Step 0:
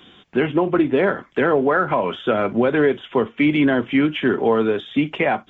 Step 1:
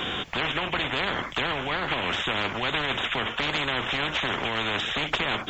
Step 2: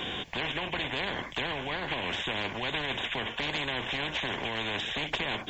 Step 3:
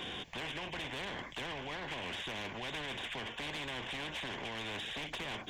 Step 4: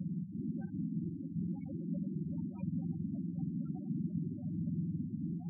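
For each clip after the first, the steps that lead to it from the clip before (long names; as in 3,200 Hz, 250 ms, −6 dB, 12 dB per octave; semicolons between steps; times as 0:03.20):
brickwall limiter −11 dBFS, peak gain reduction 3.5 dB; every bin compressed towards the loudest bin 10 to 1
parametric band 1,300 Hz −13.5 dB 0.2 octaves; level −4.5 dB
soft clipping −29 dBFS, distortion −13 dB; level −5.5 dB
frequency axis turned over on the octave scale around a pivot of 750 Hz; echo that builds up and dies away 94 ms, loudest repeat 5, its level −11 dB; spectral peaks only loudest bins 8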